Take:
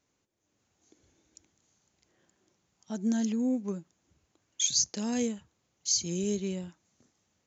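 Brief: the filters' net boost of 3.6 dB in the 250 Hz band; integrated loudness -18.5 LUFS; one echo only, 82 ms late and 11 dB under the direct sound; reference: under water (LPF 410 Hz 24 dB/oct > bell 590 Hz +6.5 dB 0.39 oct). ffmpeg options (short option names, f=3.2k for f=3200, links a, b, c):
-af "lowpass=f=410:w=0.5412,lowpass=f=410:w=1.3066,equalizer=f=250:t=o:g=4,equalizer=f=590:t=o:w=0.39:g=6.5,aecho=1:1:82:0.282,volume=11.5dB"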